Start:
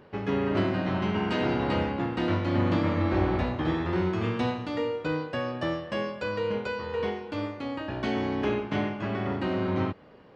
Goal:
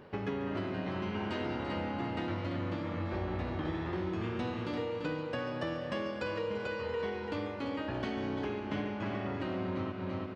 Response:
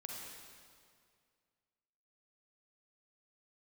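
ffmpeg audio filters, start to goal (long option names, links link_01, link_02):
-filter_complex "[0:a]aecho=1:1:339|678|1017|1356|1695:0.376|0.173|0.0795|0.0366|0.0168,acompressor=threshold=-33dB:ratio=6,asplit=2[link_01][link_02];[1:a]atrim=start_sample=2205,adelay=141[link_03];[link_02][link_03]afir=irnorm=-1:irlink=0,volume=-8dB[link_04];[link_01][link_04]amix=inputs=2:normalize=0"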